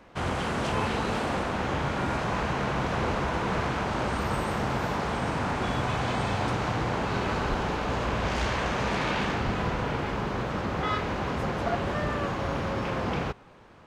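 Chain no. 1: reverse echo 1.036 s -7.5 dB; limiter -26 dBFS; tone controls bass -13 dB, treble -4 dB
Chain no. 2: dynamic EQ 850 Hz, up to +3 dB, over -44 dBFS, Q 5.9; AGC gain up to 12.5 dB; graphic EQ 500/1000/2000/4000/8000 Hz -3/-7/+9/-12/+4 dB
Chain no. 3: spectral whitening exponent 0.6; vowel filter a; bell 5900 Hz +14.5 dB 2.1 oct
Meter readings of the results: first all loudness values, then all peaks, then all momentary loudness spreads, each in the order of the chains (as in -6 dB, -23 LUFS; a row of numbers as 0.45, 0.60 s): -36.5, -18.0, -36.5 LUFS; -24.0, -4.5, -21.0 dBFS; 1, 3, 3 LU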